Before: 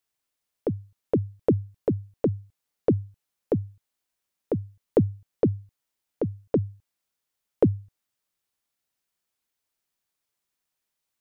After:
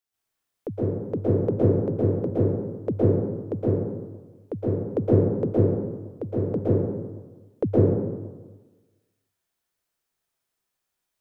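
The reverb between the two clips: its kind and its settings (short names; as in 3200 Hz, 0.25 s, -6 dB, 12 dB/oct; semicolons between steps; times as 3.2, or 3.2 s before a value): plate-style reverb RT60 1.3 s, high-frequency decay 0.45×, pre-delay 0.105 s, DRR -8.5 dB; gain -6 dB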